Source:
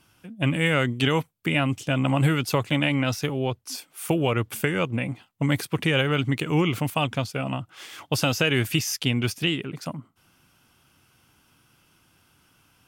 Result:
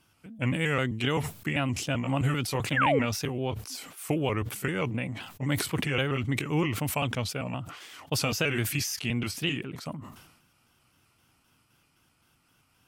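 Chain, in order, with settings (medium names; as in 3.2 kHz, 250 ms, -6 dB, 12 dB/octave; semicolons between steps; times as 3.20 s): pitch shift switched off and on -1.5 st, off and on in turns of 130 ms; painted sound fall, 2.76–2.99 s, 390–1900 Hz -19 dBFS; decay stretcher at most 64 dB/s; trim -5 dB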